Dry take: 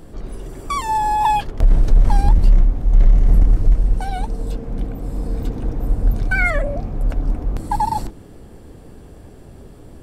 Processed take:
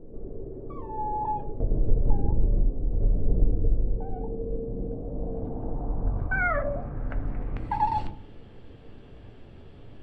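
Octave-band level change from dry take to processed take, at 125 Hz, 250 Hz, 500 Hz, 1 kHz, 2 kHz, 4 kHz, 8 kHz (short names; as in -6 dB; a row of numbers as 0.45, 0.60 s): -9.0 dB, -6.0 dB, -3.0 dB, -10.0 dB, -8.0 dB, under -15 dB, n/a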